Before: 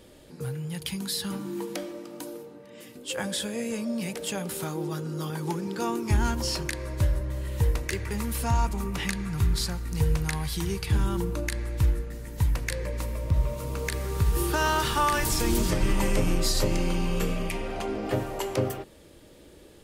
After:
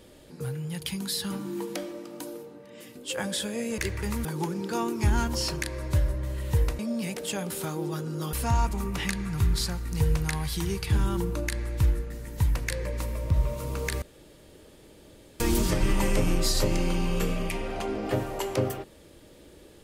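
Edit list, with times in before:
3.78–5.32 s: swap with 7.86–8.33 s
14.02–15.40 s: room tone

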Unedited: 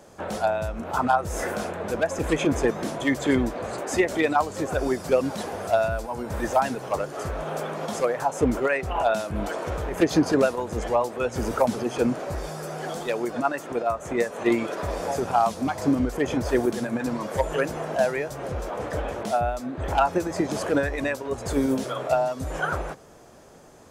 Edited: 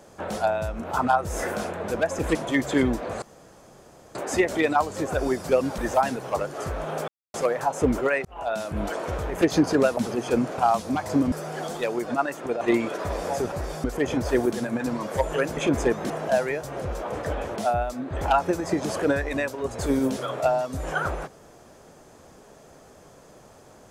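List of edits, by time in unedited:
2.35–2.88 s: move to 17.77 s
3.75 s: insert room tone 0.93 s
5.38–6.37 s: delete
7.67–7.93 s: mute
8.84–9.31 s: fade in linear
10.56–11.65 s: delete
12.26–12.58 s: swap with 15.30–16.04 s
13.87–14.39 s: delete

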